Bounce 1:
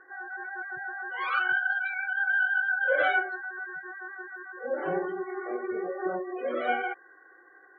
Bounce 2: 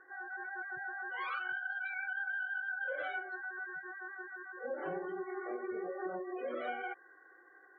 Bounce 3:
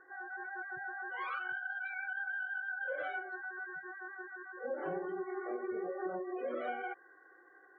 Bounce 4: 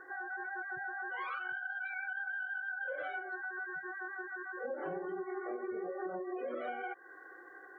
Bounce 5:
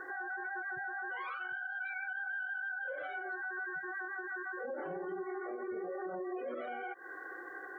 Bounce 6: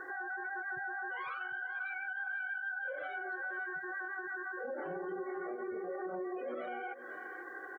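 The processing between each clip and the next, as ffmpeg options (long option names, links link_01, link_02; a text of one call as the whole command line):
ffmpeg -i in.wav -af "acompressor=threshold=-30dB:ratio=10,volume=-5dB" out.wav
ffmpeg -i in.wav -af "highshelf=frequency=2500:gain=-9,volume=1.5dB" out.wav
ffmpeg -i in.wav -af "acompressor=threshold=-49dB:ratio=2.5,volume=8dB" out.wav
ffmpeg -i in.wav -af "alimiter=level_in=16dB:limit=-24dB:level=0:latency=1:release=115,volume=-16dB,volume=7dB" out.wav
ffmpeg -i in.wav -af "aecho=1:1:499|998|1497:0.2|0.0559|0.0156" out.wav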